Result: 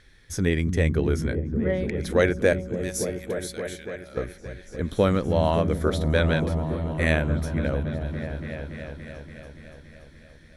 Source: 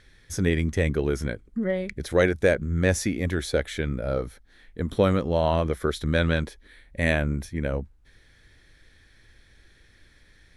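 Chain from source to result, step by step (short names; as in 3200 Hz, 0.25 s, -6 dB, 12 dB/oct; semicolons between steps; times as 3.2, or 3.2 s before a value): 2.53–4.17 differentiator; repeats that get brighter 0.286 s, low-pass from 200 Hz, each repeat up 1 oct, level -3 dB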